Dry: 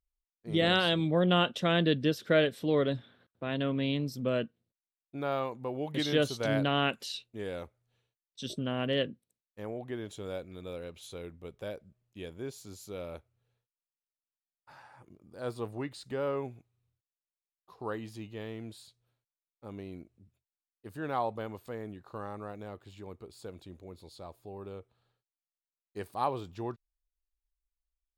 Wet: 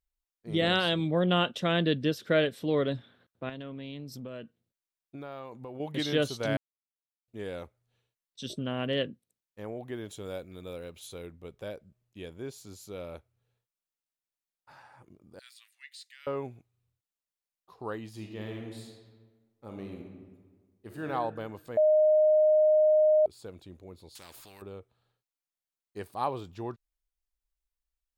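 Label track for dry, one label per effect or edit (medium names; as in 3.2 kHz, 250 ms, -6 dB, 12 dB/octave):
3.490000	5.800000	compression 5:1, threshold -38 dBFS
6.570000	7.280000	mute
9.770000	11.270000	treble shelf 9.7 kHz +9 dB
15.390000	16.270000	Chebyshev high-pass 1.9 kHz, order 4
18.090000	21.060000	reverb throw, RT60 1.5 s, DRR 1.5 dB
21.770000	23.260000	bleep 616 Hz -18.5 dBFS
24.150000	24.620000	spectrum-flattening compressor 4:1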